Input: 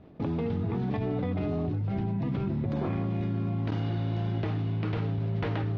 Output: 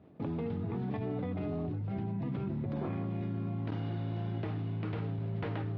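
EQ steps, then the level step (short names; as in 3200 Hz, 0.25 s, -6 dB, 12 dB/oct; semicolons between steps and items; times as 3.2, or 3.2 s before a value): HPF 82 Hz; air absorption 130 m; -5.0 dB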